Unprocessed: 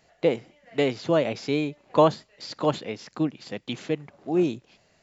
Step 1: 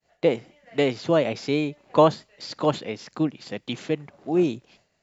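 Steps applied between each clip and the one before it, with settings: expander -55 dBFS; trim +1.5 dB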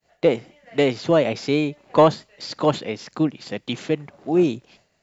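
saturation -6 dBFS, distortion -24 dB; trim +3.5 dB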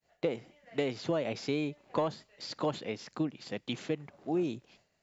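compression 10:1, threshold -18 dBFS, peak gain reduction 9.5 dB; trim -8.5 dB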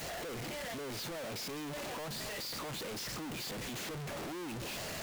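one-bit comparator; trim -5.5 dB

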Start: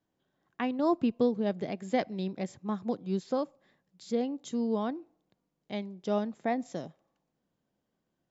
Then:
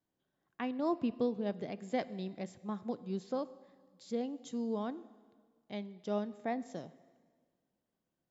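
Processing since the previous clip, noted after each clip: reverberation RT60 1.7 s, pre-delay 8 ms, DRR 16.5 dB; trim -6 dB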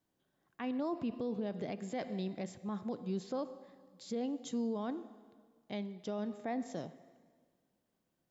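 peak limiter -33 dBFS, peak gain reduction 11.5 dB; trim +4 dB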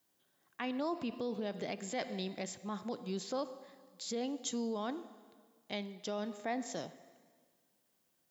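tilt EQ +2.5 dB/octave; trim +3 dB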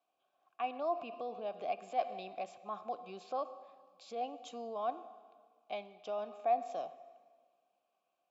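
vowel filter a; trim +10.5 dB

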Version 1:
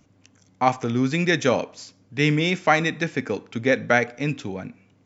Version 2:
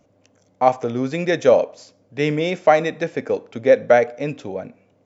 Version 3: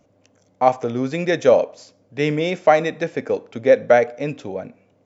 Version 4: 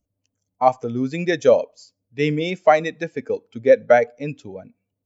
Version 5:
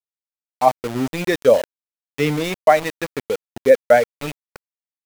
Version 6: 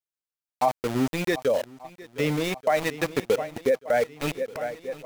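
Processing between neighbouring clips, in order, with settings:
peaking EQ 570 Hz +15 dB 1 oct; trim -4.5 dB
no audible change
expander on every frequency bin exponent 1.5; trim +1.5 dB
small samples zeroed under -25 dBFS; trim +1 dB
shuffle delay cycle 1183 ms, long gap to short 1.5:1, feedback 45%, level -19.5 dB; peak limiter -9.5 dBFS, peak gain reduction 8.5 dB; gain riding within 4 dB 0.5 s; trim -2.5 dB

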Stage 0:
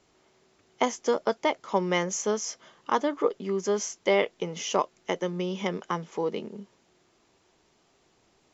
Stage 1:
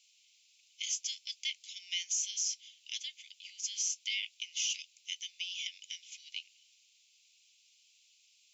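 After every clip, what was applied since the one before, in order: steep high-pass 2.4 kHz 72 dB/octave; peak limiter -28.5 dBFS, peak gain reduction 7.5 dB; trim +5 dB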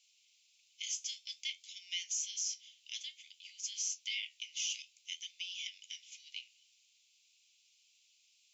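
flange 0.54 Hz, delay 9.6 ms, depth 6.4 ms, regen -65%; trim +1 dB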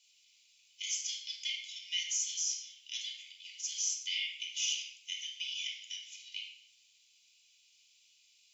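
simulated room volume 2800 m³, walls furnished, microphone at 4.8 m

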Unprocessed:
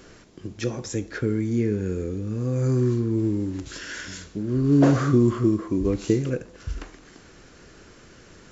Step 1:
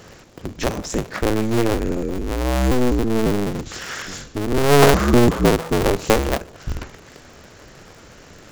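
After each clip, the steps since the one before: cycle switcher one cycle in 2, inverted; trim +5 dB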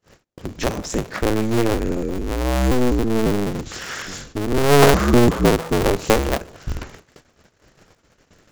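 gate -41 dBFS, range -37 dB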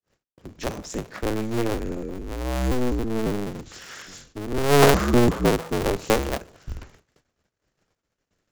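three bands expanded up and down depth 40%; trim -6 dB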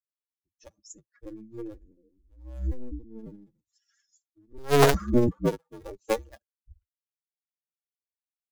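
expander on every frequency bin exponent 3

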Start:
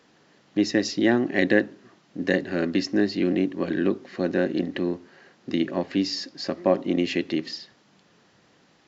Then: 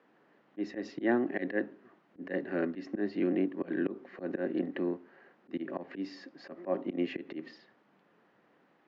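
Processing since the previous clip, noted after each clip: high-pass 88 Hz 12 dB/octave; three-band isolator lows -13 dB, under 190 Hz, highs -23 dB, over 2.4 kHz; slow attack 114 ms; trim -5 dB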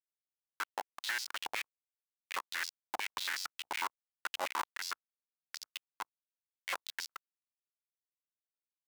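Schmitt trigger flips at -29 dBFS; level held to a coarse grid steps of 10 dB; step-sequenced high-pass 11 Hz 800–4900 Hz; trim +9 dB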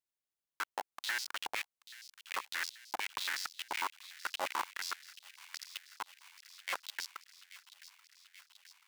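feedback echo behind a high-pass 833 ms, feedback 69%, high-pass 2.4 kHz, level -13 dB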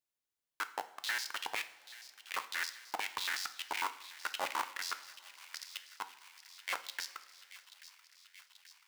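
two-slope reverb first 0.49 s, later 3.4 s, from -18 dB, DRR 9.5 dB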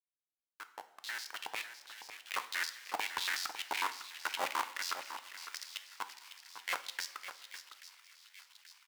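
fade-in on the opening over 2.34 s; delay 554 ms -10.5 dB; vibrato 4 Hz 59 cents; trim +1 dB

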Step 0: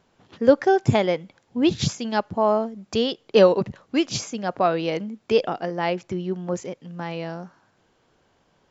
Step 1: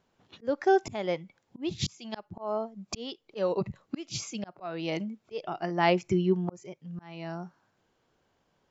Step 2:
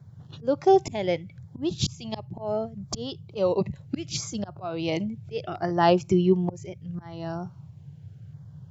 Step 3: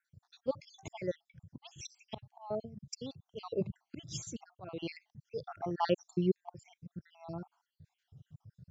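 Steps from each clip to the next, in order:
spectral noise reduction 11 dB; slow attack 656 ms; trim +2.5 dB
band noise 89–160 Hz -49 dBFS; LFO notch saw down 0.72 Hz 900–2900 Hz; trim +5 dB
random holes in the spectrogram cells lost 63%; trim -7.5 dB

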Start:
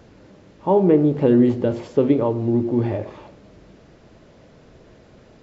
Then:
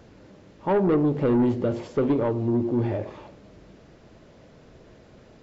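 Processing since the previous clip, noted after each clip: saturation -14 dBFS, distortion -13 dB; trim -2 dB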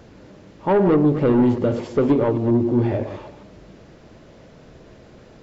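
chunks repeated in reverse 132 ms, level -10 dB; trim +4.5 dB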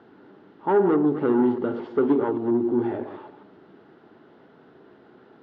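cabinet simulation 210–3500 Hz, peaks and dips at 270 Hz +4 dB, 390 Hz +7 dB, 560 Hz -8 dB, 830 Hz +6 dB, 1.4 kHz +7 dB, 2.4 kHz -8 dB; trim -6 dB

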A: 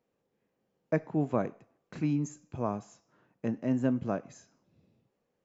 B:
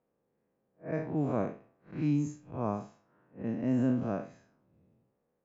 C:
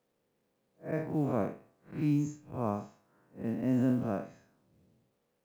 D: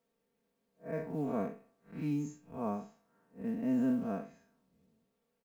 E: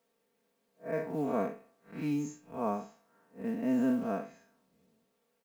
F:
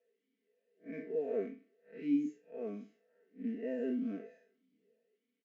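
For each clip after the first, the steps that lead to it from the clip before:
spectral blur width 125 ms; level-controlled noise filter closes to 1.6 kHz, open at -26 dBFS; trim +2 dB
companded quantiser 8-bit
comb 4.4 ms, depth 71%; trim -5.5 dB
bass shelf 190 Hz -12 dB; trim +6 dB
comb 4.6 ms, depth 52%; talking filter e-i 1.6 Hz; trim +5 dB

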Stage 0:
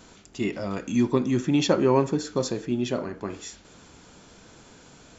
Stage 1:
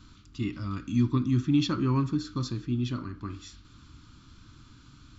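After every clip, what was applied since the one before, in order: FFT filter 120 Hz 0 dB, 180 Hz -12 dB, 300 Hz -7 dB, 460 Hz -29 dB, 770 Hz -28 dB, 1.2 kHz -6 dB, 1.8 kHz -17 dB, 4.2 kHz -8 dB, 6.9 kHz -19 dB; trim +6 dB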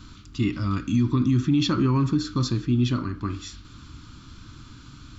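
peak limiter -21.5 dBFS, peak gain reduction 7.5 dB; trim +8 dB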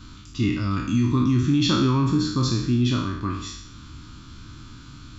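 spectral sustain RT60 0.77 s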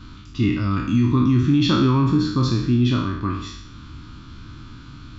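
Gaussian low-pass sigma 1.6 samples; trim +3 dB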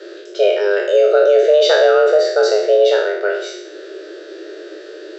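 frequency shift +310 Hz; trim +5.5 dB

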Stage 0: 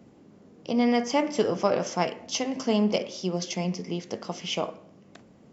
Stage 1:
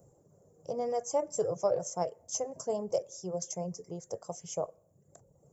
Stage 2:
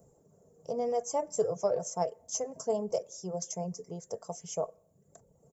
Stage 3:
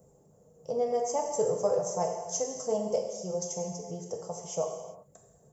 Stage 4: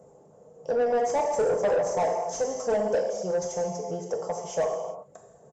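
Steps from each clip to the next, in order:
reverb removal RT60 0.76 s; FFT filter 150 Hz 0 dB, 230 Hz -20 dB, 530 Hz +1 dB, 1.5 kHz -15 dB, 2.7 kHz -27 dB, 4.3 kHz -20 dB, 7.3 kHz +9 dB; trim -1.5 dB
comb 4.5 ms, depth 38%
gated-style reverb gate 420 ms falling, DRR 1 dB
overdrive pedal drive 20 dB, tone 1.3 kHz, clips at -15.5 dBFS; resampled via 22.05 kHz

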